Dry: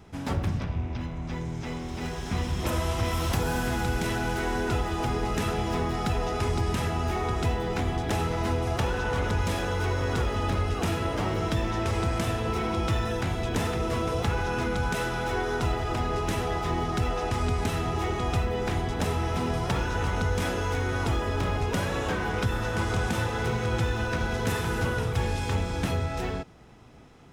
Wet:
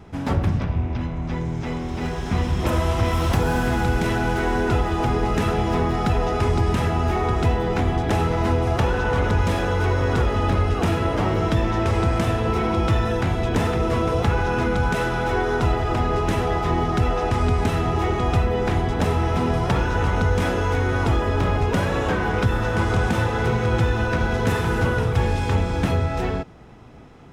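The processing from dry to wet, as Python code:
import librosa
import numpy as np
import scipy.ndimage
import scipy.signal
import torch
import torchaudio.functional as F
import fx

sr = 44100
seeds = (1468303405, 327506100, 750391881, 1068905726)

y = fx.high_shelf(x, sr, hz=3300.0, db=-8.5)
y = y * 10.0 ** (7.0 / 20.0)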